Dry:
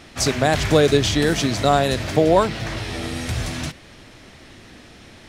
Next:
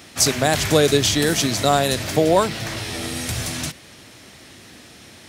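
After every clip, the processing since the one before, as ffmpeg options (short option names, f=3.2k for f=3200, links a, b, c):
-af "highpass=79,aemphasis=mode=production:type=50kf,volume=-1dB"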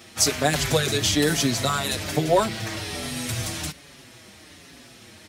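-filter_complex "[0:a]asplit=2[a][b];[b]adelay=5.7,afreqshift=-1.2[c];[a][c]amix=inputs=2:normalize=1"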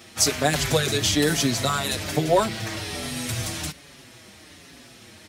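-af anull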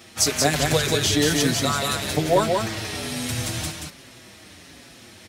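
-af "aecho=1:1:181:0.631"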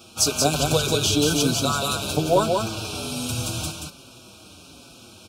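-af "asuperstop=centerf=1900:order=12:qfactor=2.4"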